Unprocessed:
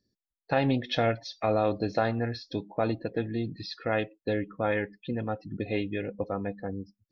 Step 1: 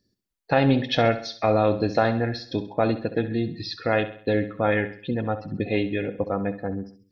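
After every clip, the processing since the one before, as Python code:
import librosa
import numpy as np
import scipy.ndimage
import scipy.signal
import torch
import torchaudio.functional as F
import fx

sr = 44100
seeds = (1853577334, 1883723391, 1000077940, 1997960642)

y = fx.echo_feedback(x, sr, ms=66, feedback_pct=45, wet_db=-13)
y = y * 10.0 ** (5.5 / 20.0)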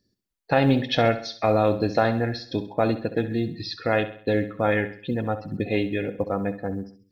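y = fx.quant_float(x, sr, bits=6)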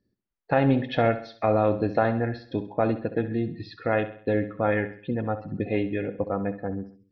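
y = scipy.signal.sosfilt(scipy.signal.butter(2, 2200.0, 'lowpass', fs=sr, output='sos'), x)
y = y * 10.0 ** (-1.5 / 20.0)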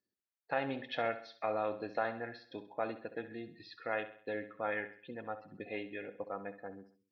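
y = fx.highpass(x, sr, hz=1000.0, slope=6)
y = y * 10.0 ** (-6.5 / 20.0)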